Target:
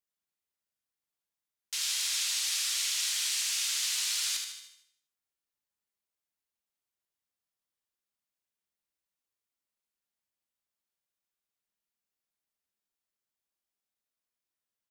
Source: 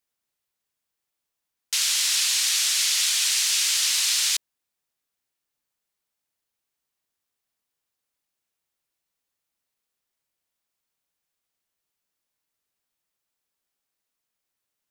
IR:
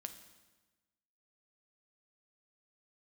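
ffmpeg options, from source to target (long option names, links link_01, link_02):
-filter_complex "[0:a]aecho=1:1:76|152|228|304|380|456:0.501|0.241|0.115|0.0554|0.0266|0.0128[link_01];[1:a]atrim=start_sample=2205,afade=type=out:start_time=0.38:duration=0.01,atrim=end_sample=17199[link_02];[link_01][link_02]afir=irnorm=-1:irlink=0,volume=-6dB"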